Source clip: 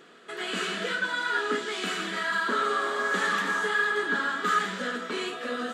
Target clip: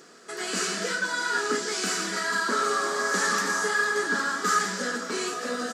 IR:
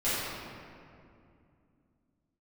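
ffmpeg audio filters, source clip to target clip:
-filter_complex "[0:a]highshelf=frequency=4200:width_type=q:width=3:gain=7.5,asplit=2[link_01][link_02];[link_02]aecho=0:1:811:0.224[link_03];[link_01][link_03]amix=inputs=2:normalize=0,volume=1.5dB"

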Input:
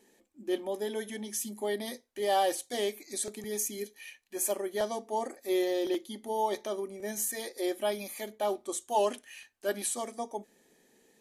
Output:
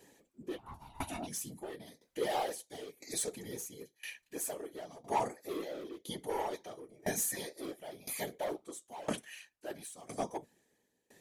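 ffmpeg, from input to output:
ffmpeg -i in.wav -filter_complex "[0:a]flanger=delay=6.4:depth=8.7:regen=-40:speed=0.32:shape=triangular,asplit=2[link_01][link_02];[link_02]aeval=exprs='0.0211*(abs(mod(val(0)/0.0211+3,4)-2)-1)':channel_layout=same,volume=-3.5dB[link_03];[link_01][link_03]amix=inputs=2:normalize=0,asplit=3[link_04][link_05][link_06];[link_04]afade=type=out:start_time=0.57:duration=0.02[link_07];[link_05]aeval=exprs='val(0)*sin(2*PI*480*n/s)':channel_layout=same,afade=type=in:start_time=0.57:duration=0.02,afade=type=out:start_time=1.26:duration=0.02[link_08];[link_06]afade=type=in:start_time=1.26:duration=0.02[link_09];[link_07][link_08][link_09]amix=inputs=3:normalize=0,afftfilt=real='hypot(re,im)*cos(2*PI*random(0))':imag='hypot(re,im)*sin(2*PI*random(1))':win_size=512:overlap=0.75,aeval=exprs='val(0)*pow(10,-23*if(lt(mod(0.99*n/s,1),2*abs(0.99)/1000),1-mod(0.99*n/s,1)/(2*abs(0.99)/1000),(mod(0.99*n/s,1)-2*abs(0.99)/1000)/(1-2*abs(0.99)/1000))/20)':channel_layout=same,volume=10dB" out.wav

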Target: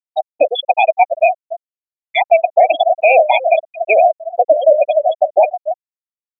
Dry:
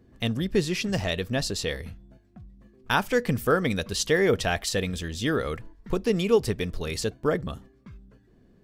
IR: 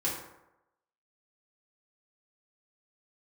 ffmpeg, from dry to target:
-filter_complex "[0:a]highpass=48,aeval=exprs='0.422*(cos(1*acos(clip(val(0)/0.422,-1,1)))-cos(1*PI/2))+0.00237*(cos(3*acos(clip(val(0)/0.422,-1,1)))-cos(3*PI/2))+0.0335*(cos(5*acos(clip(val(0)/0.422,-1,1)))-cos(5*PI/2))+0.015*(cos(6*acos(clip(val(0)/0.422,-1,1)))-cos(6*PI/2))+0.0211*(cos(7*acos(clip(val(0)/0.422,-1,1)))-cos(7*PI/2))':channel_layout=same,asplit=3[link_01][link_02][link_03];[link_01]bandpass=frequency=530:width_type=q:width=8,volume=0dB[link_04];[link_02]bandpass=frequency=1840:width_type=q:width=8,volume=-6dB[link_05];[link_03]bandpass=frequency=2480:width_type=q:width=8,volume=-9dB[link_06];[link_04][link_05][link_06]amix=inputs=3:normalize=0,lowshelf=frequency=74:gain=-6,bandreject=frequency=50:width_type=h:width=6,bandreject=frequency=100:width_type=h:width=6,bandreject=frequency=150:width_type=h:width=6,bandreject=frequency=200:width_type=h:width=6,bandreject=frequency=250:width_type=h:width=6,bandreject=frequency=300:width_type=h:width=6,bandreject=frequency=350:width_type=h:width=6,bandreject=frequency=400:width_type=h:width=6,bandreject=frequency=450:width_type=h:width=6,asetrate=59535,aresample=44100,asplit=2[link_07][link_08];[link_08]aecho=0:1:284|568|852:0.224|0.0694|0.0215[link_09];[link_07][link_09]amix=inputs=2:normalize=0,afftfilt=real='re*gte(hypot(re,im),0.0447)':imag='im*gte(hypot(re,im),0.0447)':win_size=1024:overlap=0.75,alimiter=level_in=28.5dB:limit=-1dB:release=50:level=0:latency=1,volume=-1dB"

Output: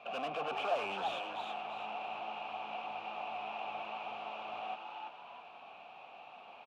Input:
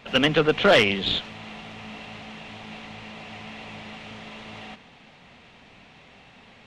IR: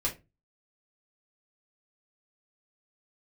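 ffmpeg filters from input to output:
-filter_complex "[0:a]acrossover=split=460|3400[link_01][link_02][link_03];[link_03]acompressor=threshold=-53dB:ratio=6[link_04];[link_01][link_02][link_04]amix=inputs=3:normalize=0,aeval=exprs='(tanh(44.7*val(0)+0.55)-tanh(0.55))/44.7':channel_layout=same,asplit=3[link_05][link_06][link_07];[link_05]bandpass=frequency=730:width_type=q:width=8,volume=0dB[link_08];[link_06]bandpass=frequency=1090:width_type=q:width=8,volume=-6dB[link_09];[link_07]bandpass=frequency=2440:width_type=q:width=8,volume=-9dB[link_10];[link_08][link_09][link_10]amix=inputs=3:normalize=0,asplit=5[link_11][link_12][link_13][link_14][link_15];[link_12]adelay=331,afreqshift=120,volume=-4.5dB[link_16];[link_13]adelay=662,afreqshift=240,volume=-14.1dB[link_17];[link_14]adelay=993,afreqshift=360,volume=-23.8dB[link_18];[link_15]adelay=1324,afreqshift=480,volume=-33.4dB[link_19];[link_11][link_16][link_17][link_18][link_19]amix=inputs=5:normalize=0,volume=10dB"

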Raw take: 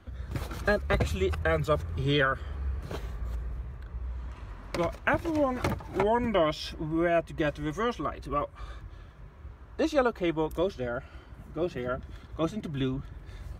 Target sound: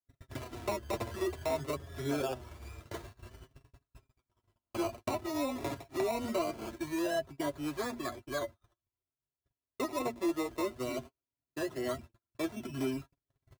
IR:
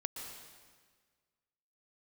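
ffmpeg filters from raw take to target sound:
-filter_complex "[0:a]acrusher=samples=22:mix=1:aa=0.000001:lfo=1:lforange=13.2:lforate=0.22,highpass=75,bandreject=frequency=60:width_type=h:width=6,bandreject=frequency=120:width_type=h:width=6,bandreject=frequency=180:width_type=h:width=6,bandreject=frequency=240:width_type=h:width=6,aecho=1:1:3:0.5,acrossover=split=310|920[link_01][link_02][link_03];[link_01]acompressor=threshold=-37dB:ratio=4[link_04];[link_02]acompressor=threshold=-27dB:ratio=4[link_05];[link_03]acompressor=threshold=-37dB:ratio=4[link_06];[link_04][link_05][link_06]amix=inputs=3:normalize=0,agate=range=-44dB:threshold=-40dB:ratio=16:detection=peak,flanger=delay=7.2:depth=1.6:regen=21:speed=0.53:shape=sinusoidal,asoftclip=type=tanh:threshold=-22dB"

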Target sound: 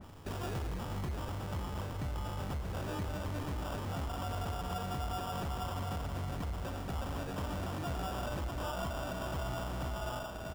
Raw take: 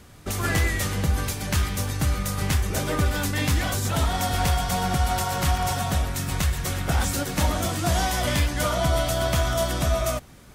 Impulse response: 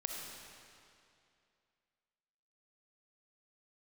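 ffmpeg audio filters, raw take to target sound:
-filter_complex "[0:a]asplit=2[link_01][link_02];[link_02]adelay=22,volume=-12dB[link_03];[link_01][link_03]amix=inputs=2:normalize=0,areverse,acompressor=mode=upward:threshold=-35dB:ratio=2.5,areverse,flanger=delay=9.8:depth=8:regen=65:speed=0.67:shape=sinusoidal,asplit=2[link_04][link_05];[link_05]equalizer=frequency=1600:width=0.45:gain=9[link_06];[1:a]atrim=start_sample=2205,adelay=99[link_07];[link_06][link_07]afir=irnorm=-1:irlink=0,volume=-15dB[link_08];[link_04][link_08]amix=inputs=2:normalize=0,acompressor=threshold=-39dB:ratio=2,aecho=1:1:633:0.355,acrusher=samples=21:mix=1:aa=0.000001,asoftclip=type=tanh:threshold=-31dB,adynamicequalizer=threshold=0.002:dfrequency=2400:dqfactor=0.7:tfrequency=2400:tqfactor=0.7:attack=5:release=100:ratio=0.375:range=1.5:mode=cutabove:tftype=highshelf"

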